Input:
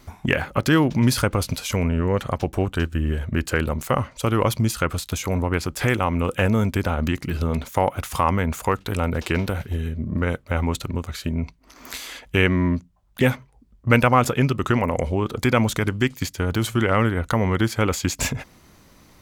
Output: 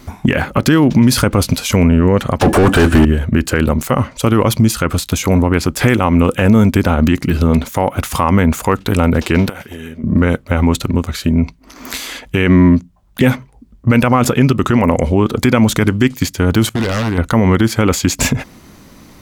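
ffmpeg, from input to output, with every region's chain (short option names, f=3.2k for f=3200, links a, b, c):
-filter_complex "[0:a]asettb=1/sr,asplit=3[a][b][c];[a]atrim=end=2.414[d];[b]atrim=start=2.41:end=3.05,asetpts=PTS-STARTPTS,afade=t=in:d=0.004:c=qsin,afade=t=out:st=0.636:d=0.004:c=qsin,equalizer=f=10k:w=1.2:g=14.5,asplit=2[e][f];[f]highpass=f=720:p=1,volume=37dB,asoftclip=type=tanh:threshold=-9dB[g];[e][g]amix=inputs=2:normalize=0,lowpass=f=1.2k:p=1,volume=-6dB,aeval=exprs='val(0)+0.00501*sin(2*PI*1700*n/s)':c=same[h];[c]atrim=start=3.046[i];[d][h]acrossfade=d=0.004:c1=hsin:c2=qsin[j];[j][i]acrossfade=d=0.004:c1=qsin:c2=hsin,asettb=1/sr,asplit=3[k][l][m];[k]atrim=end=9.494[n];[l]atrim=start=9.49:end=10.04,asetpts=PTS-STARTPTS,afade=t=in:d=0.004:c=qsin,afade=t=out:st=0.546:d=0.004:c=qsin,highpass=f=710:p=1,acompressor=threshold=-34dB:ratio=5:attack=3.2:release=140:knee=1:detection=peak,bandreject=f=4k:w=6.7[o];[m]atrim=start=10.036[p];[n][o]acrossfade=d=0.004:c1=hsin:c2=qsin[q];[q][p]acrossfade=d=0.004:c1=qsin:c2=hsin,asettb=1/sr,asplit=3[r][s][t];[r]atrim=end=16.694[u];[s]atrim=start=16.69:end=17.18,asetpts=PTS-STARTPTS,afade=t=in:d=0.004:c=qsin,afade=t=out:st=0.486:d=0.004:c=qsin,agate=range=-33dB:threshold=-28dB:ratio=3:release=100:detection=peak,aeval=exprs='0.133*(abs(mod(val(0)/0.133+3,4)-2)-1)':c=same,acompressor=threshold=-25dB:ratio=4:attack=3.2:release=140:knee=1:detection=peak[v];[t]atrim=start=17.176[w];[u][v]acrossfade=d=0.004:c1=hsin:c2=qsin[x];[x][w]acrossfade=d=0.004:c1=qsin:c2=hsin,equalizer=f=240:t=o:w=1.1:g=5.5,alimiter=level_in=10dB:limit=-1dB:release=50:level=0:latency=1,volume=-1dB"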